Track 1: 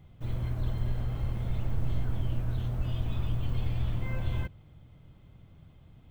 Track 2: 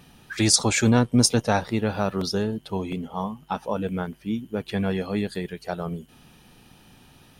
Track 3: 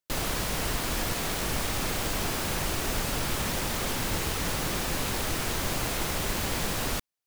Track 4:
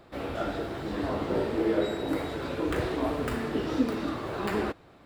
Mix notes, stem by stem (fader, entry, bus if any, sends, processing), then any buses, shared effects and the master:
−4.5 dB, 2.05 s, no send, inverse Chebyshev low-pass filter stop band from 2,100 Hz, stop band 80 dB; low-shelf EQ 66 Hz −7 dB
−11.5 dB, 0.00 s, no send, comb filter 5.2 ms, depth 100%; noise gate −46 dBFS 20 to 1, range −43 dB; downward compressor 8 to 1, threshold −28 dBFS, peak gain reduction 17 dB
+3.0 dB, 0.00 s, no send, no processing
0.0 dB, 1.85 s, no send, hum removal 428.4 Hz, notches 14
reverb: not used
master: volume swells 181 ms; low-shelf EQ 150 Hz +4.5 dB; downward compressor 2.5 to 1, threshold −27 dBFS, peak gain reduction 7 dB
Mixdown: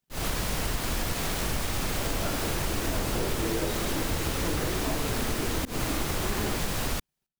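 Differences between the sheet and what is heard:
stem 1: muted
stem 2 −11.5 dB → −18.0 dB

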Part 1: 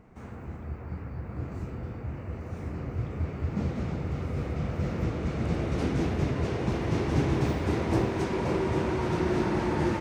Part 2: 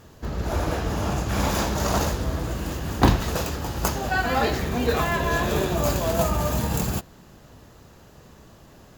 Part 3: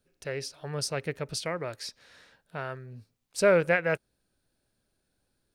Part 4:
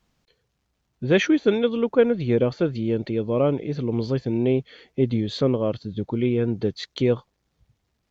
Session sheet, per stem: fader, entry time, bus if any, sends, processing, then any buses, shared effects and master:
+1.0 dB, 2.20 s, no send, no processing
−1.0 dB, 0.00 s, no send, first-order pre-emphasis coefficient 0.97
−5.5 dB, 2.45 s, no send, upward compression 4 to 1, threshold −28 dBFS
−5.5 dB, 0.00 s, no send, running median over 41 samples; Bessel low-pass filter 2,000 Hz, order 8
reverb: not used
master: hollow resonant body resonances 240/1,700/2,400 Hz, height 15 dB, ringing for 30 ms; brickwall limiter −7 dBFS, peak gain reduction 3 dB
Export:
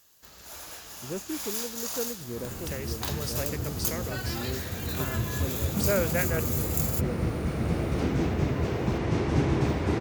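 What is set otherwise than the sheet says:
stem 4 −5.5 dB → −15.5 dB
master: missing hollow resonant body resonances 240/1,700/2,400 Hz, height 15 dB, ringing for 30 ms

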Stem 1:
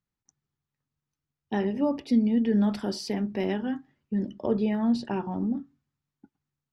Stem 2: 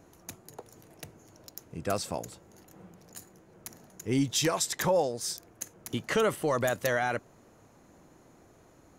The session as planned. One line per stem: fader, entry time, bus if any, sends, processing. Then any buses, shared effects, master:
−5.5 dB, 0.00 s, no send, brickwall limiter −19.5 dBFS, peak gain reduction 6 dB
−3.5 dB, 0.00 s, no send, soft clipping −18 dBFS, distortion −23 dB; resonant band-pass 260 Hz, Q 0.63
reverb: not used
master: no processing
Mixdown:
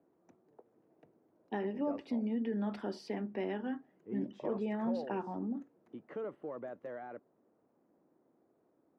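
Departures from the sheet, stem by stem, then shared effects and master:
stem 2 −3.5 dB → −10.0 dB
master: extra three-way crossover with the lows and the highs turned down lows −15 dB, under 210 Hz, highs −15 dB, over 3,000 Hz

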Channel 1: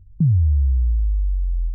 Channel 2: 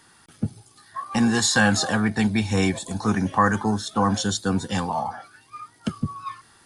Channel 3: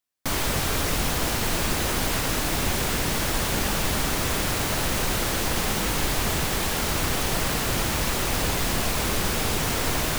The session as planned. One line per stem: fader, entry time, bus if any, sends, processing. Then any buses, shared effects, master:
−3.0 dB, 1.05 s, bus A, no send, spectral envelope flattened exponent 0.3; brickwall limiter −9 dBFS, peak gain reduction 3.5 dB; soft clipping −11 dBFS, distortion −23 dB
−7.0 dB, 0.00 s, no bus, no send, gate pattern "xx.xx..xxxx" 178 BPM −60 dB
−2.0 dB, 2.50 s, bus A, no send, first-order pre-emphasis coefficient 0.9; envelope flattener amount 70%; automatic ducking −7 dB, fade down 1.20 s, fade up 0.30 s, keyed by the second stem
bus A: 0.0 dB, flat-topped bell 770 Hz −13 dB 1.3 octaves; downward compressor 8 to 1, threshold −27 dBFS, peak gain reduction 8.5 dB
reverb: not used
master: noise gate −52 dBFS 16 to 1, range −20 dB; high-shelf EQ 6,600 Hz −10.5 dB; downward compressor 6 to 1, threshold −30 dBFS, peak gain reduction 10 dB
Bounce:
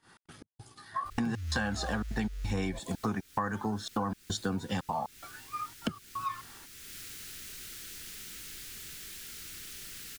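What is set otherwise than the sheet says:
stem 2 −7.0 dB → +2.0 dB
stem 3 −2.0 dB → −9.5 dB

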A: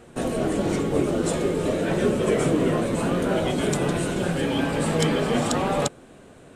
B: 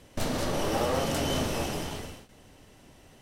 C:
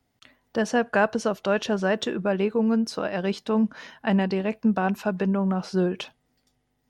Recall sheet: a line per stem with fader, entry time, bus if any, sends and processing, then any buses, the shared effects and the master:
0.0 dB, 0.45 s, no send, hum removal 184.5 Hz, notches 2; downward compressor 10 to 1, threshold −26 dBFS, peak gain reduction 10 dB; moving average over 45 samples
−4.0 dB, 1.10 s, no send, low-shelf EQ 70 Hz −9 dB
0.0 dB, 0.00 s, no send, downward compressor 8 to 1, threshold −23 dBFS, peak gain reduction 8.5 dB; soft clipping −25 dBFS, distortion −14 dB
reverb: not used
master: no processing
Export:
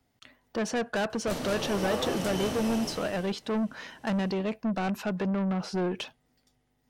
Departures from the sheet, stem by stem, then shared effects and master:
stem A: muted
stem C: missing downward compressor 8 to 1, threshold −23 dBFS, peak gain reduction 8.5 dB

